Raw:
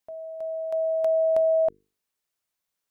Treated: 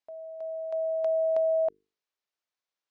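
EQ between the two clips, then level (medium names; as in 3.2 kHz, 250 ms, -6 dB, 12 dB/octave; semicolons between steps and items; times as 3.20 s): distance through air 190 m; tone controls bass -12 dB, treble +8 dB; -3.0 dB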